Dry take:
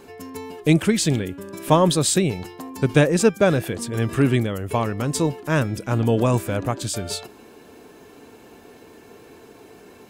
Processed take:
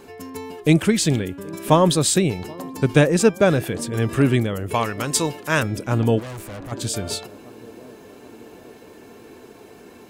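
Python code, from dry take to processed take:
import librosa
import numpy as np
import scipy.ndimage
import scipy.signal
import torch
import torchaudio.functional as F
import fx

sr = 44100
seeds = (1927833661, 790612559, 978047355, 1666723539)

y = fx.tilt_shelf(x, sr, db=-6.0, hz=730.0, at=(4.74, 5.63))
y = fx.echo_banded(y, sr, ms=778, feedback_pct=75, hz=350.0, wet_db=-21)
y = fx.tube_stage(y, sr, drive_db=33.0, bias=0.65, at=(6.18, 6.71), fade=0.02)
y = y * 10.0 ** (1.0 / 20.0)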